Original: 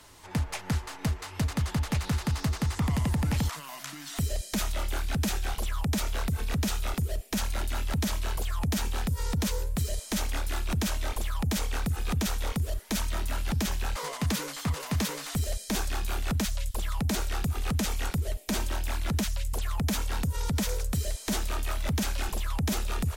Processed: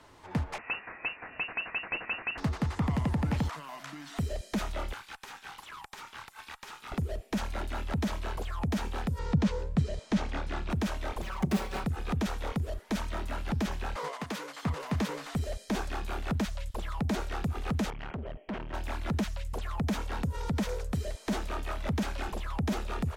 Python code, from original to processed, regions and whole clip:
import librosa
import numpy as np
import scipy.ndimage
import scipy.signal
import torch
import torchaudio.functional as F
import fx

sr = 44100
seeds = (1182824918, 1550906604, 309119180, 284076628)

y = fx.chain(x, sr, fx.highpass(hz=110.0, slope=24),
    fx.freq_invert(carrier_hz=2800), at=(0.58, 2.38))
y = fx.chain(y, sr, fx.steep_highpass(hz=810.0, slope=72),
    fx.tube_stage(drive_db=34.0, bias=0.75),
    fx.band_squash(depth_pct=100), at=(4.93, 6.92))
y = fx.chain(y, sr, fx.lowpass(hz=6300.0, slope=12),
    fx.peak_eq(hz=150.0, db=8.5, octaves=1.1), at=(9.19, 10.7))
y = fx.chain(y, sr, fx.self_delay(depth_ms=0.52),
    fx.highpass(hz=51.0, slope=12),
    fx.comb(ms=5.3, depth=0.93), at=(11.22, 11.84))
y = fx.chain(y, sr, fx.highpass(hz=510.0, slope=6),
    fx.transient(attack_db=3, sustain_db=-4),
    fx.clip_hard(threshold_db=-27.5), at=(14.08, 14.63))
y = fx.chain(y, sr, fx.brickwall_lowpass(high_hz=3300.0),
    fx.clip_hard(threshold_db=-32.5), at=(17.9, 18.74))
y = fx.lowpass(y, sr, hz=1400.0, slope=6)
y = fx.low_shelf(y, sr, hz=110.0, db=-9.0)
y = F.gain(torch.from_numpy(y), 2.0).numpy()